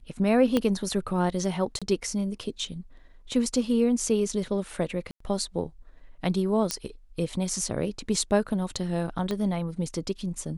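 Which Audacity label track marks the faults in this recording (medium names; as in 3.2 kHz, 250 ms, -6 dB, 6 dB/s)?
0.570000	0.570000	pop -11 dBFS
1.790000	1.820000	dropout 26 ms
5.110000	5.200000	dropout 94 ms
6.710000	6.710000	pop -10 dBFS
9.310000	9.310000	pop -17 dBFS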